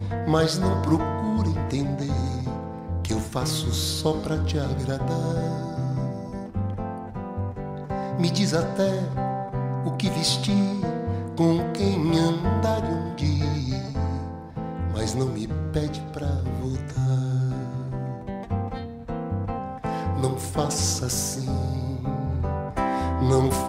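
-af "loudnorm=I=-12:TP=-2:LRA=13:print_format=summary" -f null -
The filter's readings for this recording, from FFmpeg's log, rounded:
Input Integrated:    -26.1 LUFS
Input True Peak:      -7.8 dBTP
Input LRA:             4.1 LU
Input Threshold:     -36.1 LUFS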